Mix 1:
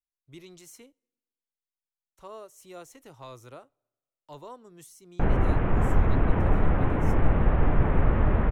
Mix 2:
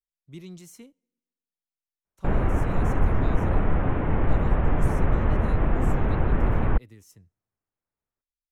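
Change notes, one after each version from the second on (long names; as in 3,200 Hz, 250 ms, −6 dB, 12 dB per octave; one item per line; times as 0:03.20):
speech: add parametric band 190 Hz +14 dB 0.76 octaves
background: entry −2.95 s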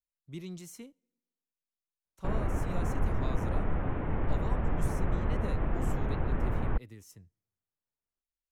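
background −8.0 dB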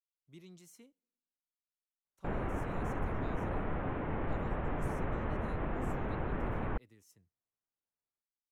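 speech −10.0 dB
master: add low-shelf EQ 130 Hz −9.5 dB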